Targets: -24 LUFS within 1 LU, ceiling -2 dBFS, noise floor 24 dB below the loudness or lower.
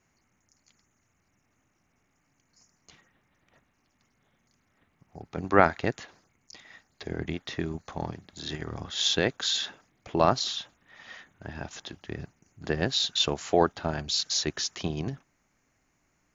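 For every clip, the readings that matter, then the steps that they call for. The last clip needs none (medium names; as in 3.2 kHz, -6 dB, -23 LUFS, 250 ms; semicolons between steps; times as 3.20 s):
loudness -28.5 LUFS; peak level -1.5 dBFS; loudness target -24.0 LUFS
-> trim +4.5 dB; peak limiter -2 dBFS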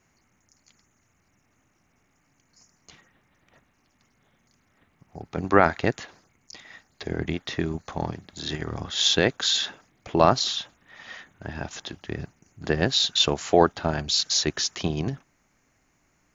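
loudness -24.5 LUFS; peak level -2.0 dBFS; noise floor -68 dBFS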